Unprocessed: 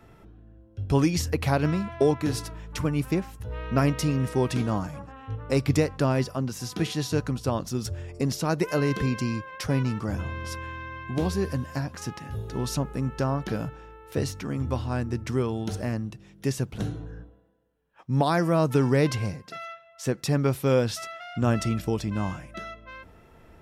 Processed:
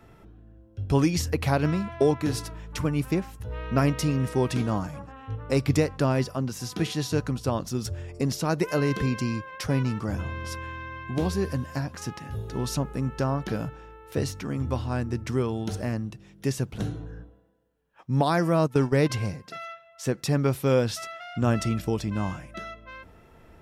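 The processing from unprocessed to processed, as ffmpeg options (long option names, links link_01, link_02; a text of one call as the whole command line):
ffmpeg -i in.wav -filter_complex "[0:a]asplit=3[link_01][link_02][link_03];[link_01]afade=type=out:start_time=18.66:duration=0.02[link_04];[link_02]agate=range=-15dB:threshold=-23dB:ratio=16:release=100:detection=peak,afade=type=in:start_time=18.66:duration=0.02,afade=type=out:start_time=19.09:duration=0.02[link_05];[link_03]afade=type=in:start_time=19.09:duration=0.02[link_06];[link_04][link_05][link_06]amix=inputs=3:normalize=0" out.wav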